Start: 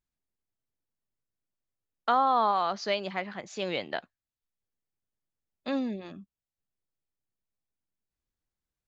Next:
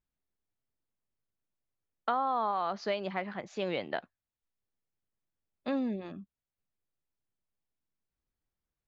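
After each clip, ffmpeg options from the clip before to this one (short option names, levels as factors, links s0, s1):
-af "aemphasis=mode=reproduction:type=75fm,acompressor=threshold=0.0398:ratio=3"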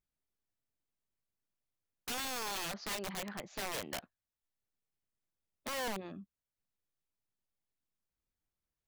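-af "aeval=exprs='(mod(31.6*val(0)+1,2)-1)/31.6':c=same,volume=0.708"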